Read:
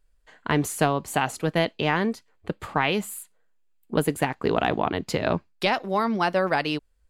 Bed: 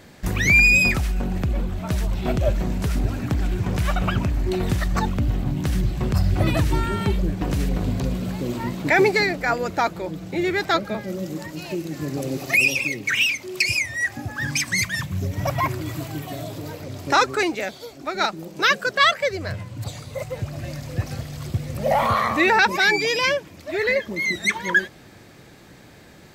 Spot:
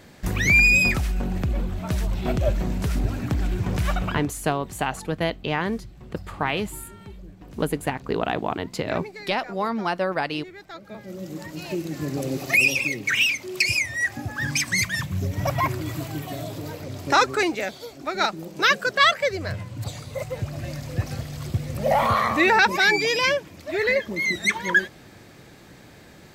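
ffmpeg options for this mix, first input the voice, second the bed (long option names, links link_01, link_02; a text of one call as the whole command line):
ffmpeg -i stem1.wav -i stem2.wav -filter_complex "[0:a]adelay=3650,volume=-2dB[link_01];[1:a]volume=18dB,afade=type=out:start_time=3.93:duration=0.38:silence=0.11885,afade=type=in:start_time=10.75:duration=0.97:silence=0.105925[link_02];[link_01][link_02]amix=inputs=2:normalize=0" out.wav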